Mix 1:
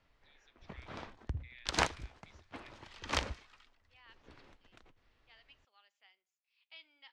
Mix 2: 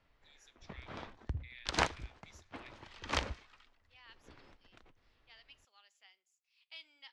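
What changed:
speech: remove high-frequency loss of the air 220 metres
master: add high-shelf EQ 7,900 Hz −7 dB

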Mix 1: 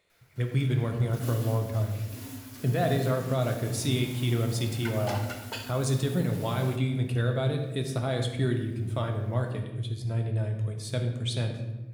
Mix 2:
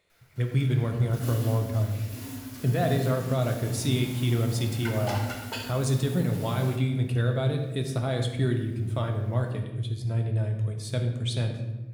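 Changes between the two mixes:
background: send +6.0 dB
master: add low-shelf EQ 170 Hz +3 dB

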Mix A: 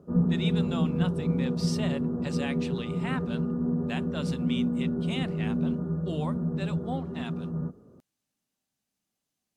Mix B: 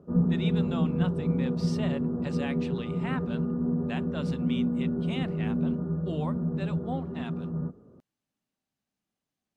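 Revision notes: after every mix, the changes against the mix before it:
master: add high-shelf EQ 4,700 Hz −12 dB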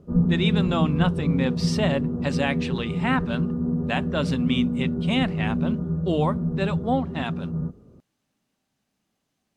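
speech +11.5 dB
background: remove high-pass filter 200 Hz 6 dB per octave

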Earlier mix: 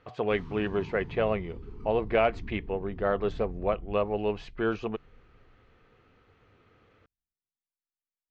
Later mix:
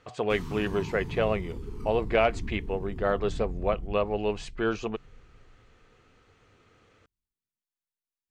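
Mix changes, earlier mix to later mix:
background +5.0 dB
master: remove high-frequency loss of the air 200 metres

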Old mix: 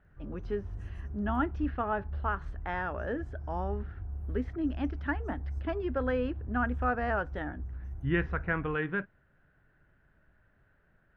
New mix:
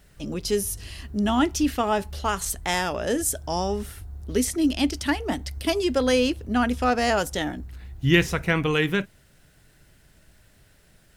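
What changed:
speech: remove transistor ladder low-pass 1,900 Hz, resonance 55%
master: add parametric band 2,000 Hz +6.5 dB 0.54 octaves

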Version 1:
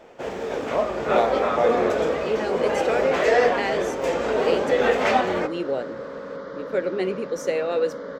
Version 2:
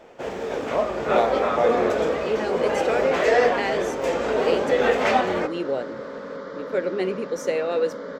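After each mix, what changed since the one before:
second sound: send on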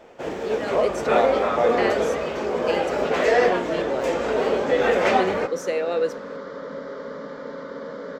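speech: entry −1.80 s

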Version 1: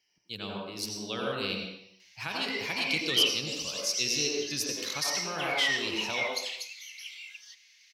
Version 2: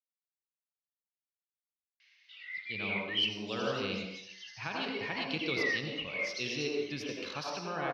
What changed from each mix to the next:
speech: entry +2.40 s
master: add high-frequency loss of the air 280 metres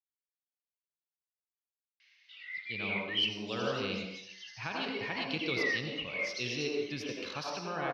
master: remove mains-hum notches 60/120 Hz

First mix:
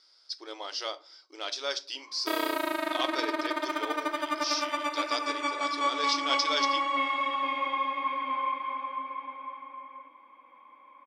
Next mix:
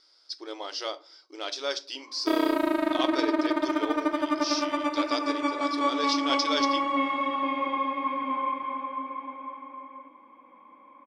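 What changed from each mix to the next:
background: add spectral tilt −2 dB per octave
master: add low-shelf EQ 370 Hz +11 dB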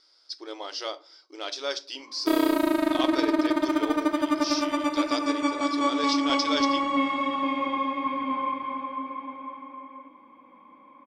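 background: add bass and treble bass +9 dB, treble +9 dB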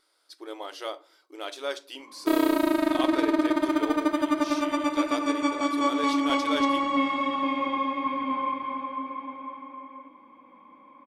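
speech: remove low-pass with resonance 5,200 Hz, resonance Q 6.2

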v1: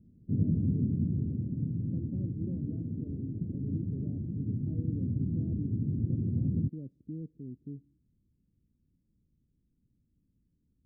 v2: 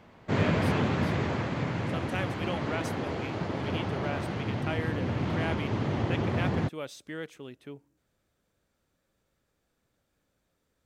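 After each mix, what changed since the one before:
speech −6.5 dB
master: remove inverse Chebyshev low-pass filter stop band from 900 Hz, stop band 60 dB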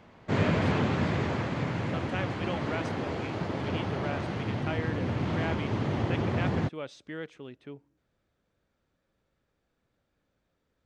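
speech: add high-frequency loss of the air 110 metres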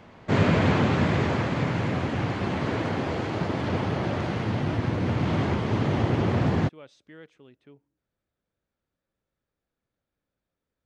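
speech −8.5 dB
background +5.0 dB

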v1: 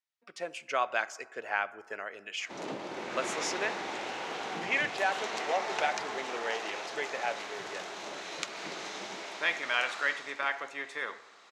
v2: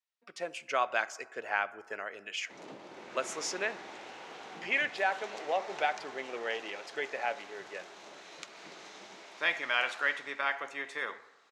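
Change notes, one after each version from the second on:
background −9.5 dB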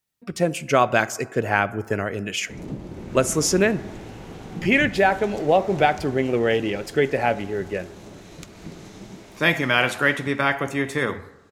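speech +9.0 dB
master: remove band-pass filter 720–5,500 Hz

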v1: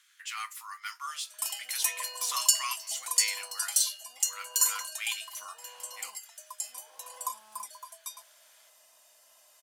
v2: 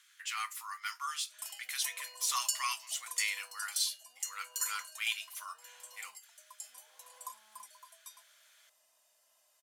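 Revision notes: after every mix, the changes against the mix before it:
background −10.5 dB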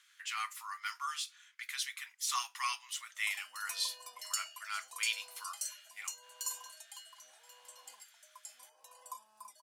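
background: entry +1.85 s
master: add high-shelf EQ 7,200 Hz −6.5 dB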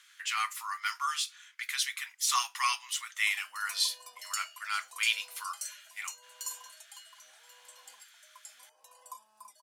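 speech +6.5 dB

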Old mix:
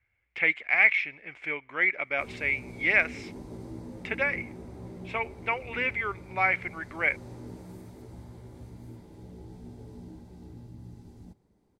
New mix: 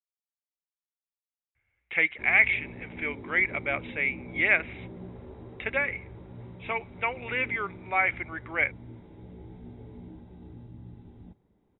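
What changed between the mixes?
speech: entry +1.55 s
master: add linear-phase brick-wall low-pass 3,900 Hz

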